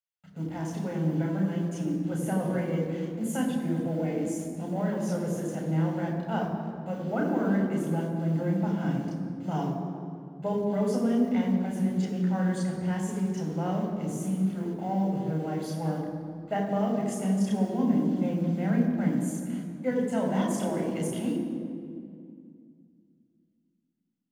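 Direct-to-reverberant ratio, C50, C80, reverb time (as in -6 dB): -0.5 dB, 4.0 dB, 5.0 dB, 2.3 s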